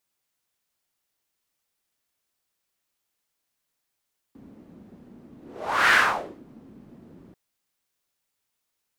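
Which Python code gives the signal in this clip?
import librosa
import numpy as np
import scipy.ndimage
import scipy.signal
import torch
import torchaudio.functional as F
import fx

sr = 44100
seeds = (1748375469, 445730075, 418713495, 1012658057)

y = fx.whoosh(sr, seeds[0], length_s=2.99, peak_s=1.58, rise_s=0.58, fall_s=0.54, ends_hz=240.0, peak_hz=1700.0, q=3.0, swell_db=31.0)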